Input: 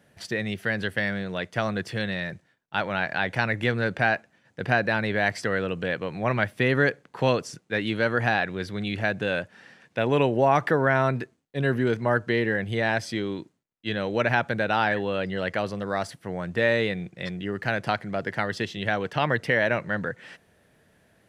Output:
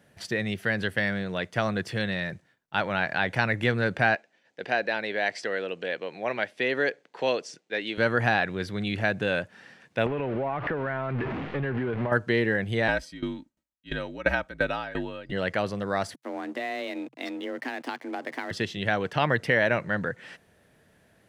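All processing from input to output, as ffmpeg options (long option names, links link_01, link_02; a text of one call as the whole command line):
ffmpeg -i in.wav -filter_complex "[0:a]asettb=1/sr,asplit=3[link_01][link_02][link_03];[link_01]atrim=end=4.154[link_04];[link_02]atrim=start=4.15:end=7.98,asetpts=PTS-STARTPTS,afade=type=in:duration=0.004:curve=qsin,afade=type=out:start_time=3.826:duration=0.004:curve=qsin,highpass=400,lowpass=6300,equalizer=frequency=1200:width=1.6:gain=-8[link_05];[link_03]atrim=start=7.976[link_06];[link_04][link_05]acrossfade=duration=0.004:curve1=hsin:curve2=qsin[link_07];[link_07][link_06]acrossfade=duration=0.004:curve1=qsin:curve2=hsin,asettb=1/sr,asplit=3[link_08][link_09][link_10];[link_08]atrim=end=10.064[link_11];[link_09]atrim=start=10.06:end=12.12,asetpts=PTS-STARTPTS,afade=type=in:duration=0.004:curve=qsin,afade=type=out:start_time=2.056:duration=0.004:curve=qsin,aeval=exprs='val(0)+0.5*0.0562*sgn(val(0))':channel_layout=same,lowpass=frequency=2600:width=0.5412,lowpass=frequency=2600:width=1.3066,acompressor=threshold=-25dB:ratio=8:attack=3.2:release=140:knee=1:detection=peak[link_12];[link_10]atrim=start=12.116[link_13];[link_11][link_12]acrossfade=duration=0.004:curve1=hsin:curve2=qsin[link_14];[link_14][link_13]acrossfade=duration=0.004:curve1=qsin:curve2=hsin,asettb=1/sr,asplit=3[link_15][link_16][link_17];[link_15]atrim=end=12.884[link_18];[link_16]atrim=start=12.88:end=15.32,asetpts=PTS-STARTPTS,afade=type=in:duration=0.004:curve=qsin,afade=type=out:start_time=2.436:duration=0.004:curve=qsin,aecho=1:1:3.1:0.63,atrim=end_sample=107604,afreqshift=-53,aeval=exprs='val(0)*pow(10,-19*if(lt(mod(2.9*n/s,1),2*abs(2.9)/1000),1-mod(2.9*n/s,1)/(2*abs(2.9)/1000),(mod(2.9*n/s,1)-2*abs(2.9)/1000)/(1-2*abs(2.9)/1000))/20)':channel_layout=same[link_19];[link_17]atrim=start=15.316[link_20];[link_18][link_19]acrossfade=duration=0.004:curve1=hsin:curve2=qsin[link_21];[link_21][link_20]acrossfade=duration=0.004:curve1=qsin:curve2=hsin,asettb=1/sr,asplit=3[link_22][link_23][link_24];[link_22]atrim=end=16.144[link_25];[link_23]atrim=start=16.14:end=18.51,asetpts=PTS-STARTPTS,afade=type=in:duration=0.004:curve=qsin,afade=type=out:start_time=2.366:duration=0.004:curve=qsin,acompressor=threshold=-27dB:ratio=6:attack=3.2:release=140:knee=1:detection=peak,aeval=exprs='sgn(val(0))*max(abs(val(0))-0.00376,0)':channel_layout=same,afreqshift=130[link_26];[link_24]atrim=start=18.506[link_27];[link_25][link_26]acrossfade=duration=0.004:curve1=hsin:curve2=qsin[link_28];[link_28][link_27]acrossfade=duration=0.004:curve1=qsin:curve2=hsin" out.wav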